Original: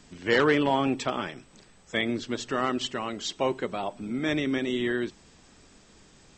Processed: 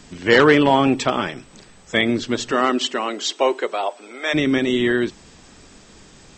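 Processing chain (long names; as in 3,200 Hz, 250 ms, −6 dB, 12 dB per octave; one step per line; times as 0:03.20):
0:02.51–0:04.33: high-pass filter 180 Hz → 550 Hz 24 dB per octave
level +9 dB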